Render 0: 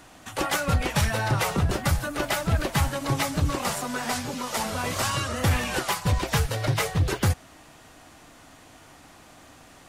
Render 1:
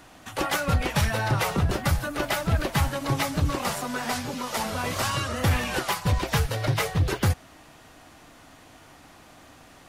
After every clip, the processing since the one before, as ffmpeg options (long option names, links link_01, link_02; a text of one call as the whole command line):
ffmpeg -i in.wav -af "equalizer=frequency=7900:width=1.5:gain=-3.5" out.wav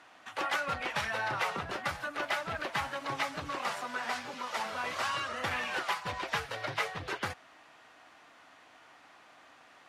ffmpeg -i in.wav -af "bandpass=frequency=1600:width_type=q:width=0.64:csg=0,volume=-3dB" out.wav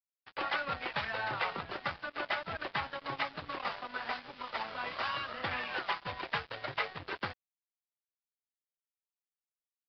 ffmpeg -i in.wav -af "aeval=exprs='sgn(val(0))*max(abs(val(0))-0.00668,0)':channel_layout=same,aresample=11025,aresample=44100" out.wav